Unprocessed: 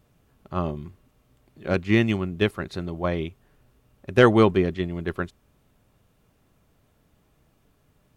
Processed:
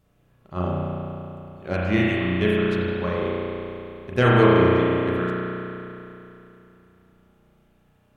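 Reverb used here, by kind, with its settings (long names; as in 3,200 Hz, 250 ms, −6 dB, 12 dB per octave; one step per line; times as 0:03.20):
spring reverb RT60 3 s, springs 33 ms, chirp 70 ms, DRR −6.5 dB
level −4.5 dB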